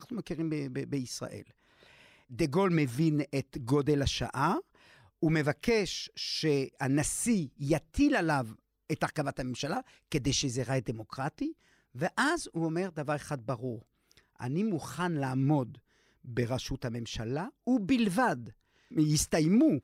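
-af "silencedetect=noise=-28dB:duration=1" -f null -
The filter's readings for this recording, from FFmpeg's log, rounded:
silence_start: 1.25
silence_end: 2.40 | silence_duration: 1.14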